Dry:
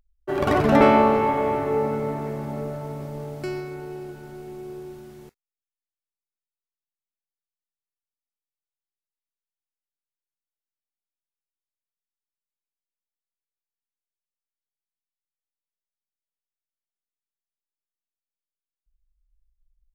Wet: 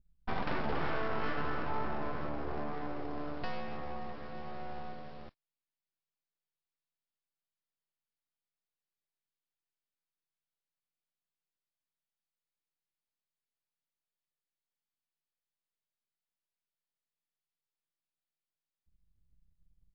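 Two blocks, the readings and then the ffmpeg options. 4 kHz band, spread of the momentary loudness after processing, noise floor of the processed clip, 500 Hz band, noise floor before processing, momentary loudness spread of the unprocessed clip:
-9.0 dB, 11 LU, under -85 dBFS, -17.5 dB, under -85 dBFS, 22 LU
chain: -af "alimiter=limit=0.2:level=0:latency=1:release=95,acompressor=threshold=0.0251:ratio=2,aresample=11025,aeval=exprs='abs(val(0))':c=same,aresample=44100,adynamicequalizer=threshold=0.00282:dfrequency=3700:dqfactor=0.75:tfrequency=3700:tqfactor=0.75:attack=5:release=100:ratio=0.375:range=2.5:mode=cutabove:tftype=bell,tremolo=f=160:d=0.261"

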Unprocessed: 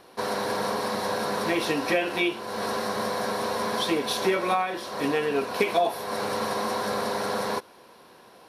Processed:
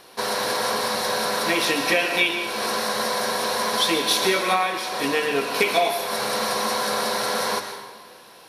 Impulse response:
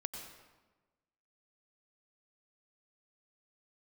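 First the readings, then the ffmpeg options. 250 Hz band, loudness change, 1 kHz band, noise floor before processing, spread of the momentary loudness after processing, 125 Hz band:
0.0 dB, +5.0 dB, +3.5 dB, -52 dBFS, 5 LU, -1.0 dB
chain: -filter_complex "[0:a]bandreject=f=50:t=h:w=6,bandreject=f=100:t=h:w=6,bandreject=f=150:t=h:w=6,bandreject=f=200:t=h:w=6,bandreject=f=250:t=h:w=6,bandreject=f=300:t=h:w=6,bandreject=f=350:t=h:w=6,asplit=2[s0][s1];[s1]tiltshelf=f=1200:g=-8[s2];[1:a]atrim=start_sample=2205,asetrate=35721,aresample=44100[s3];[s2][s3]afir=irnorm=-1:irlink=0,volume=1.41[s4];[s0][s4]amix=inputs=2:normalize=0,volume=0.75"

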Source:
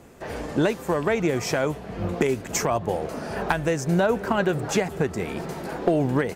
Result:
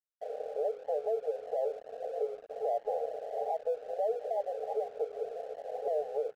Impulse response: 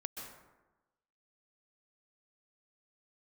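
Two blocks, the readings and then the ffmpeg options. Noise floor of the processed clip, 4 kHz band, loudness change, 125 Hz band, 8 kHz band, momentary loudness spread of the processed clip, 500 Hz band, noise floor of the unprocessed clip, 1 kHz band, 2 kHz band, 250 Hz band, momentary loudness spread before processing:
-56 dBFS, under -25 dB, -10.0 dB, under -40 dB, under -30 dB, 6 LU, -7.0 dB, -39 dBFS, -9.0 dB, under -30 dB, under -35 dB, 9 LU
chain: -af "bandreject=f=60:t=h:w=6,bandreject=f=120:t=h:w=6,bandreject=f=180:t=h:w=6,bandreject=f=240:t=h:w=6,bandreject=f=300:t=h:w=6,bandreject=f=360:t=h:w=6,bandreject=f=420:t=h:w=6,bandreject=f=480:t=h:w=6,bandreject=f=540:t=h:w=6,afwtdn=0.0398,afftfilt=real='re*between(b*sr/4096,410,830)':imag='im*between(b*sr/4096,410,830)':win_size=4096:overlap=0.75,alimiter=limit=0.0668:level=0:latency=1:release=163,aeval=exprs='sgn(val(0))*max(abs(val(0))-0.00141,0)':c=same"

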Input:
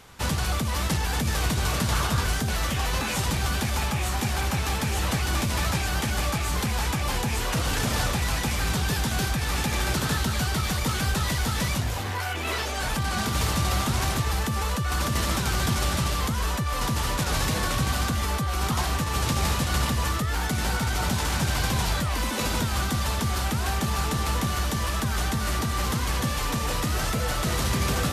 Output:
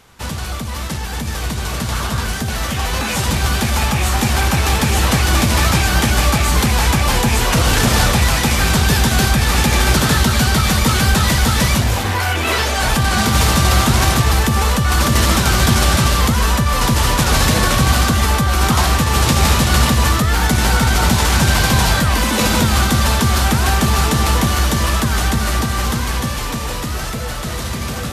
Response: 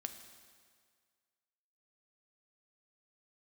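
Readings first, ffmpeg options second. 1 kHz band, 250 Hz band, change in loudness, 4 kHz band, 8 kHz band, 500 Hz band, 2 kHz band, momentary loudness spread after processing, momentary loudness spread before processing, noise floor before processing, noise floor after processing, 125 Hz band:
+10.5 dB, +11.0 dB, +11.0 dB, +11.0 dB, +10.5 dB, +10.5 dB, +11.0 dB, 9 LU, 2 LU, -29 dBFS, -23 dBFS, +10.5 dB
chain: -filter_complex "[0:a]dynaudnorm=f=480:g=13:m=3.76,asplit=2[s0][s1];[1:a]atrim=start_sample=2205[s2];[s1][s2]afir=irnorm=-1:irlink=0,volume=2.99[s3];[s0][s3]amix=inputs=2:normalize=0,volume=0.376"

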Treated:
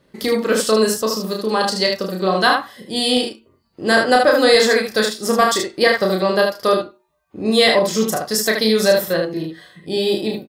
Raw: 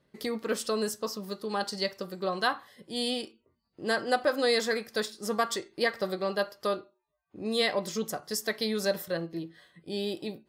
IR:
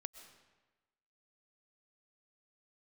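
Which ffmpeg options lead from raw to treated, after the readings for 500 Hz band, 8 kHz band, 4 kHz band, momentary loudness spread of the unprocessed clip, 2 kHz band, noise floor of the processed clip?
+14.0 dB, +14.0 dB, +13.5 dB, 10 LU, +14.0 dB, -61 dBFS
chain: -af "aecho=1:1:32|76:0.631|0.562,apsyclip=6.31,volume=0.596"

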